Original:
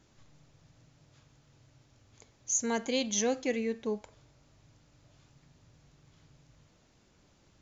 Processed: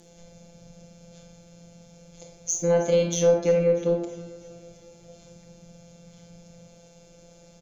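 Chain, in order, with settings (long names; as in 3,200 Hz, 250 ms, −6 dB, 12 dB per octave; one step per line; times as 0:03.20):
ring modulation 56 Hz
flat-topped bell 680 Hz +13 dB 1 octave
phases set to zero 171 Hz
drawn EQ curve 460 Hz 0 dB, 720 Hz −15 dB, 6,900 Hz +3 dB
harmonic generator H 8 −37 dB, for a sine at −1 dBFS
treble cut that deepens with the level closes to 1,200 Hz, closed at −25 dBFS
in parallel at +2.5 dB: downward compressor, threshold −45 dBFS, peak gain reduction 17.5 dB
on the sum: soft clipping −18.5 dBFS, distortion −26 dB
repeating echo 321 ms, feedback 58%, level −19 dB
on a send at −2.5 dB: convolution reverb RT60 0.65 s, pre-delay 25 ms
on the sum: level +8 dB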